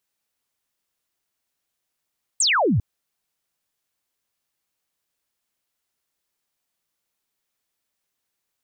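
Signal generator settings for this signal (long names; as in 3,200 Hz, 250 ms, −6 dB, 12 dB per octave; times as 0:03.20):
single falling chirp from 8,700 Hz, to 84 Hz, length 0.40 s sine, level −16 dB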